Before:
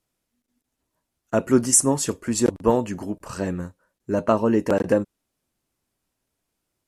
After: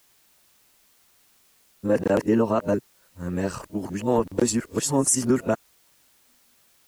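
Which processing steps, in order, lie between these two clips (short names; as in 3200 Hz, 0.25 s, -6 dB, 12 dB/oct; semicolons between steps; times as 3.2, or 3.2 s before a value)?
whole clip reversed; added noise white -61 dBFS; limiter -10 dBFS, peak gain reduction 6.5 dB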